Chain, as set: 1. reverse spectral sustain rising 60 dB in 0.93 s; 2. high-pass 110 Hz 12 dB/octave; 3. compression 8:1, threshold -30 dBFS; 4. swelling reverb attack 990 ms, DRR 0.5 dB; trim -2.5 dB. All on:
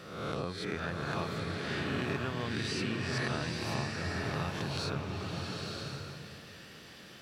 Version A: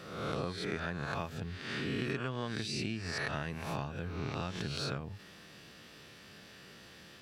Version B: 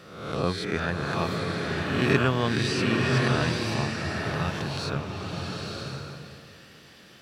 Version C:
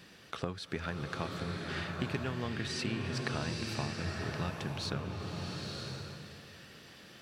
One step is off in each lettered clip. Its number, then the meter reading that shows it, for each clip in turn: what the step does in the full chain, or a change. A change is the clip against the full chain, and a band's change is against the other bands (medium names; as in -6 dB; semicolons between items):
4, momentary loudness spread change +4 LU; 3, mean gain reduction 4.5 dB; 1, crest factor change +3.5 dB